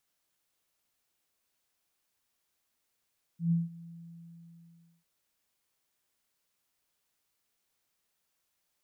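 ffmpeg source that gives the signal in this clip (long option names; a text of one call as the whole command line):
ffmpeg -f lavfi -i "aevalsrc='0.075*sin(2*PI*168*t)':duration=1.65:sample_rate=44100,afade=type=in:duration=0.124,afade=type=out:start_time=0.124:duration=0.173:silence=0.0841,afade=type=out:start_time=0.49:duration=1.16" out.wav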